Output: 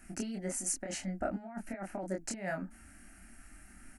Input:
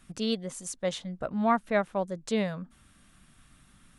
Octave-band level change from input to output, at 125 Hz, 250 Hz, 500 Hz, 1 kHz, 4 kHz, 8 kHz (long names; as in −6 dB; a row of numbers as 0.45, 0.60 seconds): −5.5, −8.0, −10.0, −12.5, −11.0, +4.0 decibels